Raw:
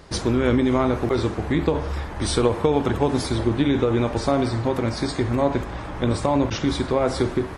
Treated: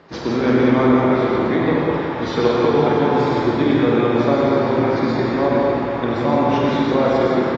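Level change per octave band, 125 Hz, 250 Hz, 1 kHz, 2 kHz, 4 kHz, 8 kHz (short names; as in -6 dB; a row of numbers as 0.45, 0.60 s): +0.5 dB, +5.0 dB, +7.0 dB, +6.5 dB, +0.5 dB, under -10 dB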